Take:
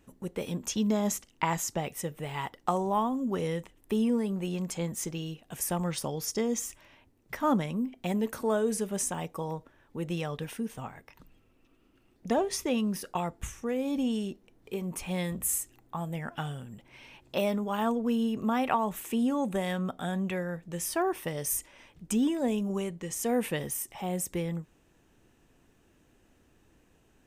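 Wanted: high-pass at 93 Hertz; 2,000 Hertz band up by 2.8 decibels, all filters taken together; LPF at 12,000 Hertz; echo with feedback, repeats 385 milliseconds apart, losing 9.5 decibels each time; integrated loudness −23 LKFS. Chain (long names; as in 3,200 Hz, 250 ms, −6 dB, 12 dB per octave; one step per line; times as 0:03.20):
high-pass filter 93 Hz
low-pass filter 12,000 Hz
parametric band 2,000 Hz +3.5 dB
repeating echo 385 ms, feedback 33%, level −9.5 dB
level +8 dB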